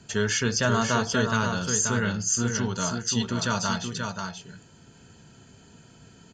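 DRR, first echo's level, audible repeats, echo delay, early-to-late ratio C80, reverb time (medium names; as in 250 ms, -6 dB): no reverb, -5.5 dB, 1, 531 ms, no reverb, no reverb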